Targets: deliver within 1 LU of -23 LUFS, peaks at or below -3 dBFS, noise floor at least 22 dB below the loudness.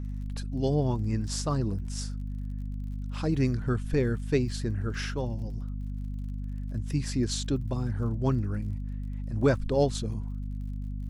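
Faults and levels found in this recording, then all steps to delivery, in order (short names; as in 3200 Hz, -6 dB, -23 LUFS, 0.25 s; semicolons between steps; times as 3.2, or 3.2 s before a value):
ticks 38/s; hum 50 Hz; harmonics up to 250 Hz; hum level -31 dBFS; loudness -30.5 LUFS; peak -11.5 dBFS; loudness target -23.0 LUFS
-> de-click; notches 50/100/150/200/250 Hz; gain +7.5 dB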